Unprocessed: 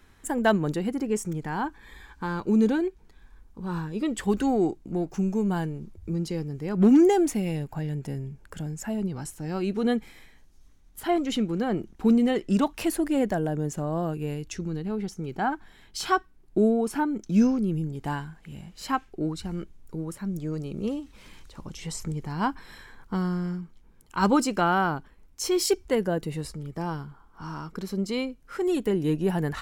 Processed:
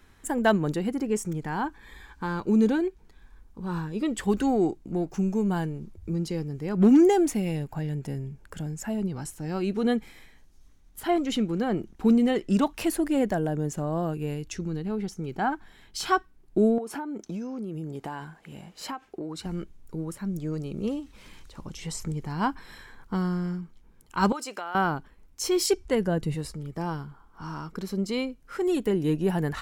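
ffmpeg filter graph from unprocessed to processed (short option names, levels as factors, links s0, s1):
-filter_complex "[0:a]asettb=1/sr,asplit=3[s0][s1][s2];[s0]atrim=end=16.784[s3];[s1]atrim=start=16.78:end=19.46,asetpts=PTS-STARTPTS,afade=t=in:d=0.004:c=qsin,afade=t=out:st=2.676:d=0.004:c=qsin,highpass=f=210:p=1,equalizer=f=630:t=o:w=2.2:g=6,acompressor=threshold=0.0316:ratio=16:attack=3.2:release=140:knee=1:detection=peak[s4];[s2]atrim=start=19.456[s5];[s3][s4]acrossfade=d=0.004:c1=hsin:c2=qsin[s6];[s6][s5]acrossfade=d=0.004:c1=qsin:c2=hsin,asettb=1/sr,asplit=3[s7][s8][s9];[s7]atrim=end=24.324[s10];[s8]atrim=start=24.32:end=24.75,asetpts=PTS-STARTPTS,afade=t=in:d=0.004:c=qsin,afade=t=out:st=0.426:d=0.004:c=qsin,highpass=540,acompressor=threshold=0.0251:ratio=4:attack=3.2:release=140:knee=1:detection=peak[s11];[s9]atrim=start=24.746[s12];[s10][s11]acrossfade=d=0.004:c1=hsin:c2=qsin[s13];[s13][s12]acrossfade=d=0.004:c1=qsin:c2=hsin,asettb=1/sr,asplit=3[s14][s15][s16];[s14]atrim=end=25.674[s17];[s15]atrim=start=25.67:end=26.35,asetpts=PTS-STARTPTS,afade=t=in:d=0.004:c=qsin,afade=t=out:st=0.676:d=0.004:c=qsin,lowpass=12000,asubboost=boost=7.5:cutoff=240[s18];[s16]atrim=start=26.346[s19];[s17][s18]acrossfade=d=0.004:c1=hsin:c2=qsin[s20];[s20][s19]acrossfade=d=0.004:c1=qsin:c2=hsin"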